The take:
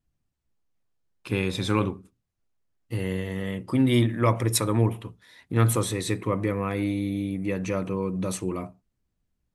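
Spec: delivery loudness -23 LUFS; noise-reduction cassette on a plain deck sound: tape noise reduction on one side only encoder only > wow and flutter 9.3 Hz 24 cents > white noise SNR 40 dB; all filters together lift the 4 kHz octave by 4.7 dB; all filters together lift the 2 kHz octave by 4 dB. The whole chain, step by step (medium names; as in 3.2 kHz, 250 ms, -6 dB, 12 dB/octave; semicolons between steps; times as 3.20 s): peaking EQ 2 kHz +3.5 dB; peaking EQ 4 kHz +4.5 dB; tape noise reduction on one side only encoder only; wow and flutter 9.3 Hz 24 cents; white noise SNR 40 dB; trim +3 dB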